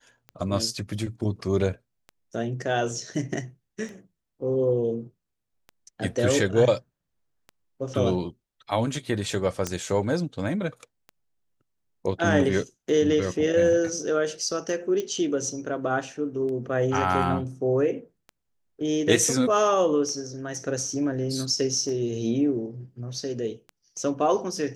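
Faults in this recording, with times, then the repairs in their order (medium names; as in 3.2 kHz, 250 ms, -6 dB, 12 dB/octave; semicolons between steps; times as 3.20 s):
tick 33 1/3 rpm -27 dBFS
9.67 s: pop -13 dBFS
15.00 s: pop -17 dBFS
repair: de-click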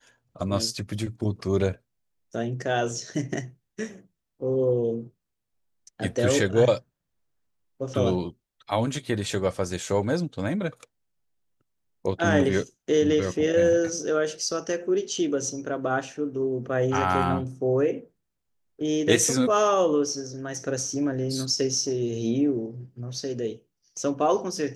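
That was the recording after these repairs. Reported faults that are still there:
9.67 s: pop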